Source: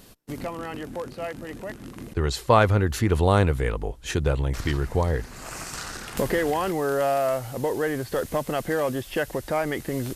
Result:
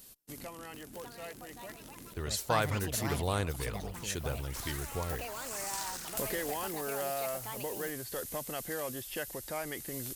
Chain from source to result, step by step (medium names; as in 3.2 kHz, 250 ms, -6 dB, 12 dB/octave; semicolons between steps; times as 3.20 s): pre-emphasis filter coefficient 0.8; ever faster or slower copies 732 ms, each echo +6 st, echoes 3, each echo -6 dB